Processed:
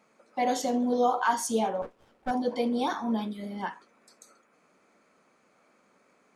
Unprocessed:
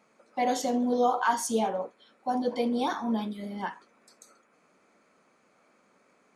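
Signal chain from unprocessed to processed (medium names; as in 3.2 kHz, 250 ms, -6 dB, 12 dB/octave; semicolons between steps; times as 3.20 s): 1.82–2.31 s: sliding maximum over 17 samples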